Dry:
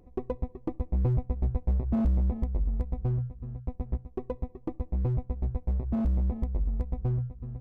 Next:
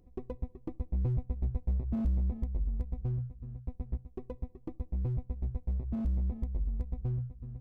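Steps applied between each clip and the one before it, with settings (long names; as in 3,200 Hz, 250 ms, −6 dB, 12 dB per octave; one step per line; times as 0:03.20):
parametric band 840 Hz −6.5 dB 2.8 octaves
level −4 dB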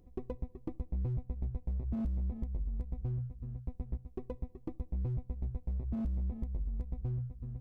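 downward compressor, threshold −33 dBFS, peak gain reduction 7.5 dB
level +1 dB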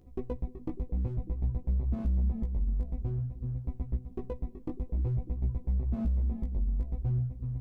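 chorus effect 0.53 Hz, delay 15 ms, depth 4.8 ms
echo through a band-pass that steps 298 ms, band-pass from 210 Hz, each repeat 0.7 octaves, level −11 dB
level +7 dB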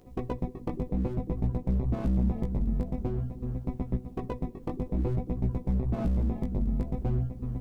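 ceiling on every frequency bin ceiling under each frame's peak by 15 dB
level +2 dB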